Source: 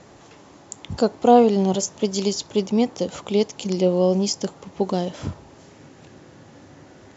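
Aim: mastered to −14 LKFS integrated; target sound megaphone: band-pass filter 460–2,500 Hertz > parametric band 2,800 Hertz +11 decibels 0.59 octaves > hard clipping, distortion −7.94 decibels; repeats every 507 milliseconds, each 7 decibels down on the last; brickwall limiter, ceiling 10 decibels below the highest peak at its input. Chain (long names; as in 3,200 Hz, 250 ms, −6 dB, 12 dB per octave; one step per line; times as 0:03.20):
brickwall limiter −12.5 dBFS
band-pass filter 460–2,500 Hz
parametric band 2,800 Hz +11 dB 0.59 octaves
repeating echo 507 ms, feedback 45%, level −7 dB
hard clipping −27 dBFS
level +18.5 dB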